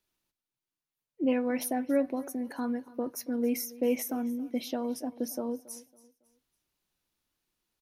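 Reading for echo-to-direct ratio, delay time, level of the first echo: -19.5 dB, 277 ms, -20.0 dB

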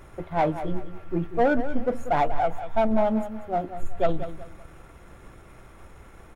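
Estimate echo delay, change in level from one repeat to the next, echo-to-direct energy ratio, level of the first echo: 189 ms, -10.0 dB, -11.0 dB, -11.5 dB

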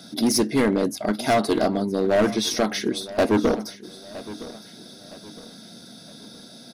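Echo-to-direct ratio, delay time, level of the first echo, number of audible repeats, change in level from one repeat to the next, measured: -16.5 dB, 964 ms, -17.0 dB, 3, -8.0 dB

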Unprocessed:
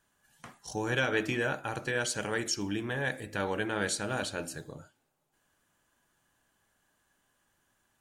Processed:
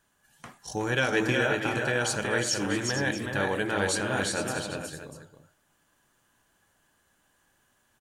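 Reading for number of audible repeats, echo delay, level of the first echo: 4, 329 ms, -19.5 dB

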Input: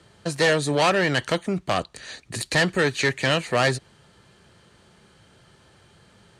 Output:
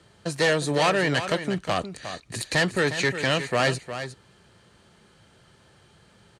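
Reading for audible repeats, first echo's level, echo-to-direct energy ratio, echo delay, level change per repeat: 1, -10.5 dB, -10.5 dB, 358 ms, no regular repeats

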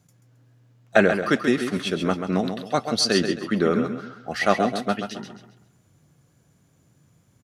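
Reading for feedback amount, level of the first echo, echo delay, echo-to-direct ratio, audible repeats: 34%, -7.5 dB, 134 ms, -7.0 dB, 3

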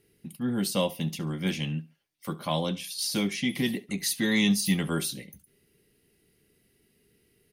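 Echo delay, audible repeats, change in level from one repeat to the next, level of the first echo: 69 ms, 2, -12.5 dB, -20.0 dB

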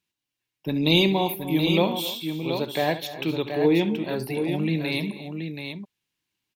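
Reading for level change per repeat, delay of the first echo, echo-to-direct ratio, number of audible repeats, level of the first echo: no regular repeats, 68 ms, -5.5 dB, 4, -13.5 dB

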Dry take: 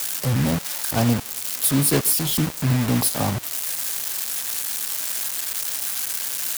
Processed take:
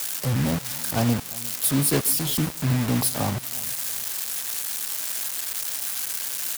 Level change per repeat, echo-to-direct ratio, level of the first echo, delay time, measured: -9.0 dB, -20.5 dB, -21.0 dB, 349 ms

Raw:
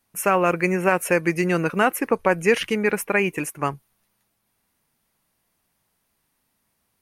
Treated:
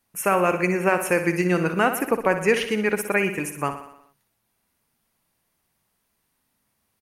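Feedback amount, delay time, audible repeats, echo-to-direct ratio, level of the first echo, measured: 59%, 61 ms, 6, -8.0 dB, -10.0 dB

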